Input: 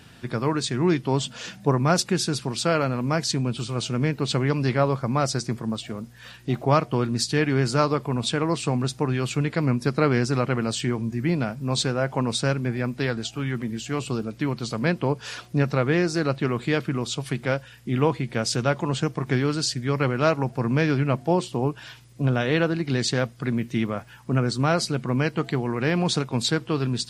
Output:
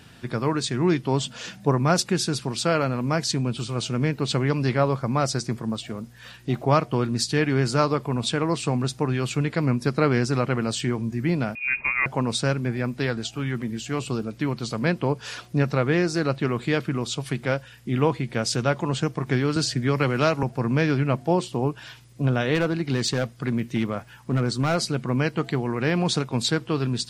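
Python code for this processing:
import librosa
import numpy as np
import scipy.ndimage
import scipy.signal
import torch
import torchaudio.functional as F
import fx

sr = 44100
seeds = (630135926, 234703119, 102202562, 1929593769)

y = fx.freq_invert(x, sr, carrier_hz=2600, at=(11.55, 12.06))
y = fx.band_squash(y, sr, depth_pct=70, at=(19.56, 20.43))
y = fx.clip_hard(y, sr, threshold_db=-16.5, at=(22.54, 24.81), fade=0.02)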